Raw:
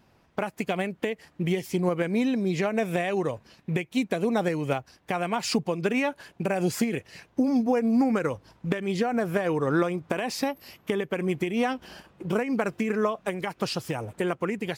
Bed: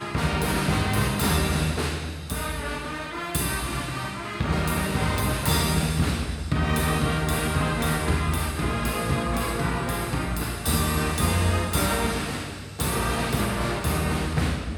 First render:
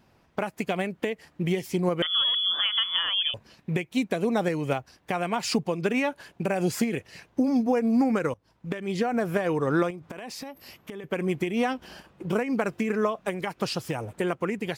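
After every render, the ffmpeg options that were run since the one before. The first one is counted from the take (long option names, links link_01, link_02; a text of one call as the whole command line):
ffmpeg -i in.wav -filter_complex "[0:a]asettb=1/sr,asplit=3[link_01][link_02][link_03];[link_01]atrim=end=2.024[link_04];[link_02]atrim=start=2.02:end=3.34,asetpts=PTS-STARTPTS,afade=type=in:duration=0.004:curve=qsin,afade=type=out:start_time=1.316:duration=0.004:curve=qsin,lowpass=frequency=3100:width_type=q:width=0.5098,lowpass=frequency=3100:width_type=q:width=0.6013,lowpass=frequency=3100:width_type=q:width=0.9,lowpass=frequency=3100:width_type=q:width=2.563,afreqshift=-3600[link_05];[link_03]atrim=start=3.336[link_06];[link_04][link_05]acrossfade=duration=0.004:curve1=hsin:curve2=qsin[link_07];[link_07][link_06]acrossfade=duration=0.004:curve1=qsin:curve2=hsin,asettb=1/sr,asplit=3[link_08][link_09][link_10];[link_08]atrim=end=9.904[link_11];[link_09]atrim=start=9.9:end=11.04,asetpts=PTS-STARTPTS,afade=type=in:duration=0.004:curve=qsin,afade=type=out:start_time=1.136:duration=0.004:curve=qsin,acompressor=threshold=-35dB:ratio=6:attack=3.2:release=140:knee=1:detection=peak[link_12];[link_10]atrim=start=11.036[link_13];[link_11][link_12]acrossfade=duration=0.004:curve1=hsin:curve2=qsin[link_14];[link_14][link_13]acrossfade=duration=0.004:curve1=qsin:curve2=hsin,asplit=2[link_15][link_16];[link_15]atrim=end=8.34,asetpts=PTS-STARTPTS,afade=type=out:start_time=8.336:duration=0.004:curve=hsin:silence=0.1[link_17];[link_16]atrim=start=8.34,asetpts=PTS-STARTPTS,afade=type=in:duration=0.71:silence=0.1[link_18];[link_17][link_18]concat=n=2:v=0:a=1" out.wav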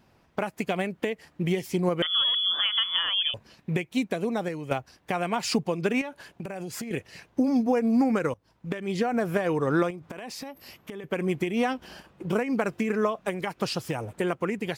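ffmpeg -i in.wav -filter_complex "[0:a]asettb=1/sr,asplit=3[link_01][link_02][link_03];[link_01]atrim=end=6.014[link_04];[link_02]atrim=start=6.01:end=6.91,asetpts=PTS-STARTPTS,afade=type=in:duration=0.004:curve=qsin,afade=type=out:start_time=0.896:duration=0.004:curve=qsin,acompressor=threshold=-32dB:ratio=6:attack=3.2:release=140:knee=1:detection=peak[link_05];[link_03]atrim=start=6.906[link_06];[link_04][link_05]acrossfade=duration=0.004:curve1=hsin:curve2=qsin[link_07];[link_07][link_06]acrossfade=duration=0.004:curve1=qsin:curve2=hsin,asplit=2[link_08][link_09];[link_08]atrim=end=4.71,asetpts=PTS-STARTPTS,afade=type=out:start_time=3.89:duration=0.82:silence=0.398107[link_10];[link_09]atrim=start=4.71,asetpts=PTS-STARTPTS,afade=type=in:duration=0.004:curve=hsin:silence=0.398107[link_11];[link_10][link_11]concat=n=2:v=0:a=1" out.wav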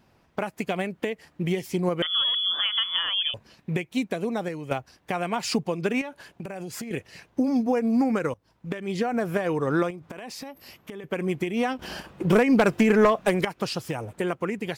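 ffmpeg -i in.wav -filter_complex "[0:a]asettb=1/sr,asplit=3[link_01][link_02][link_03];[link_01]atrim=end=11.794[link_04];[link_02]atrim=start=11.79:end=13.45,asetpts=PTS-STARTPTS,afade=type=in:duration=0.004:curve=qsin,afade=type=out:start_time=1.656:duration=0.004:curve=qsin,aeval=exprs='0.266*sin(PI/2*1.78*val(0)/0.266)':channel_layout=same[link_05];[link_03]atrim=start=13.446[link_06];[link_04][link_05]acrossfade=duration=0.004:curve1=hsin:curve2=qsin[link_07];[link_07][link_06]acrossfade=duration=0.004:curve1=qsin:curve2=hsin" out.wav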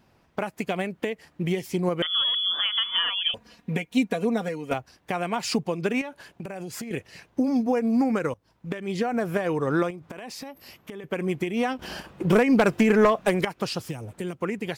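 ffmpeg -i in.wav -filter_complex "[0:a]asettb=1/sr,asplit=3[link_01][link_02][link_03];[link_01]atrim=end=2.854[link_04];[link_02]atrim=start=2.85:end=4.74,asetpts=PTS-STARTPTS,afade=type=in:duration=0.004:curve=qsin,afade=type=out:start_time=1.886:duration=0.004:curve=qsin,aecho=1:1:4.2:0.72,atrim=end_sample=83349[link_05];[link_03]atrim=start=4.736[link_06];[link_04][link_05]acrossfade=duration=0.004:curve1=hsin:curve2=qsin[link_07];[link_07][link_06]acrossfade=duration=0.004:curve1=qsin:curve2=hsin,asettb=1/sr,asplit=3[link_08][link_09][link_10];[link_08]atrim=end=13.804[link_11];[link_09]atrim=start=13.8:end=14.42,asetpts=PTS-STARTPTS,afade=type=in:duration=0.004:curve=qsin,afade=type=out:start_time=0.616:duration=0.004:curve=qsin,acrossover=split=330|3000[link_12][link_13][link_14];[link_13]acompressor=threshold=-44dB:ratio=3:attack=3.2:release=140:knee=2.83:detection=peak[link_15];[link_12][link_15][link_14]amix=inputs=3:normalize=0[link_16];[link_10]atrim=start=14.416[link_17];[link_11][link_16]acrossfade=duration=0.004:curve1=hsin:curve2=qsin[link_18];[link_18][link_17]acrossfade=duration=0.004:curve1=qsin:curve2=hsin" out.wav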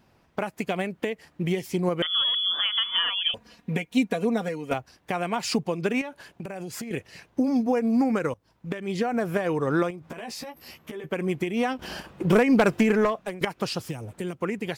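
ffmpeg -i in.wav -filter_complex "[0:a]asettb=1/sr,asplit=3[link_01][link_02][link_03];[link_01]atrim=end=10.034[link_04];[link_02]atrim=start=10.03:end=11.1,asetpts=PTS-STARTPTS,afade=type=in:duration=0.004:curve=qsin,afade=type=out:start_time=1.066:duration=0.004:curve=qsin,asplit=2[link_05][link_06];[link_06]adelay=13,volume=-3.5dB[link_07];[link_05][link_07]amix=inputs=2:normalize=0,atrim=end_sample=47187[link_08];[link_03]atrim=start=11.096[link_09];[link_04][link_08]acrossfade=duration=0.004:curve1=hsin:curve2=qsin[link_10];[link_10][link_09]acrossfade=duration=0.004:curve1=qsin:curve2=hsin,asplit=2[link_11][link_12];[link_11]atrim=end=13.41,asetpts=PTS-STARTPTS,afade=type=out:start_time=12.75:duration=0.66:silence=0.141254[link_13];[link_12]atrim=start=13.41,asetpts=PTS-STARTPTS,afade=type=in:duration=0.004:curve=hsin:silence=0.141254[link_14];[link_13][link_14]concat=n=2:v=0:a=1" out.wav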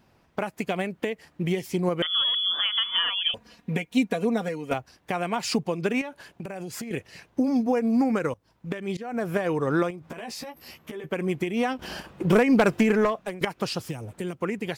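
ffmpeg -i in.wav -filter_complex "[0:a]asplit=2[link_01][link_02];[link_01]atrim=end=8.97,asetpts=PTS-STARTPTS,afade=type=out:start_time=8.966:duration=0.004:curve=hsin:silence=0.0668344[link_03];[link_02]atrim=start=8.97,asetpts=PTS-STARTPTS,afade=type=in:duration=0.41:curve=qsin:silence=0.0668344[link_04];[link_03][link_04]concat=n=2:v=0:a=1" out.wav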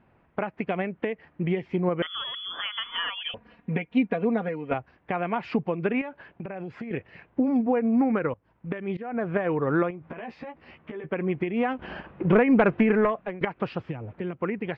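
ffmpeg -i in.wav -af "lowpass=frequency=2500:width=0.5412,lowpass=frequency=2500:width=1.3066" out.wav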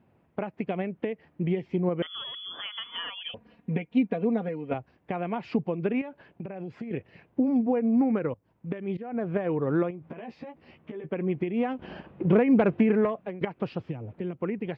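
ffmpeg -i in.wav -af "highpass=78,equalizer=frequency=1500:width=0.68:gain=-8.5" out.wav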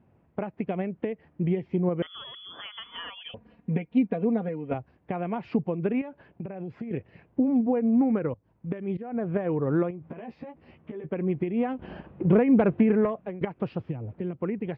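ffmpeg -i in.wav -af "lowpass=frequency=2200:poles=1,lowshelf=frequency=92:gain=8.5" out.wav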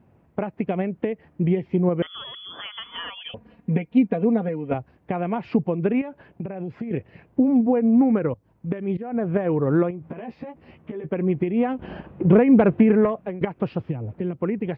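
ffmpeg -i in.wav -af "volume=5dB" out.wav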